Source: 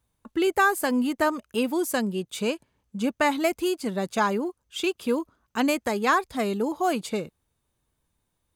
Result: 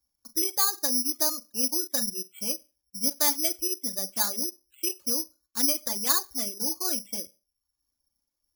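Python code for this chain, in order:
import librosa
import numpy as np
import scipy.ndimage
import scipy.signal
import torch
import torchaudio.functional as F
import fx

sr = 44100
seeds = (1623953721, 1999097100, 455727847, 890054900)

y = fx.rev_schroeder(x, sr, rt60_s=0.31, comb_ms=31, drr_db=8.0)
y = fx.dereverb_blind(y, sr, rt60_s=0.59)
y = y + 0.75 * np.pad(y, (int(3.5 * sr / 1000.0), 0))[:len(y)]
y = fx.spec_gate(y, sr, threshold_db=-30, keep='strong')
y = (np.kron(scipy.signal.resample_poly(y, 1, 8), np.eye(8)[0]) * 8)[:len(y)]
y = F.gain(torch.from_numpy(y), -14.0).numpy()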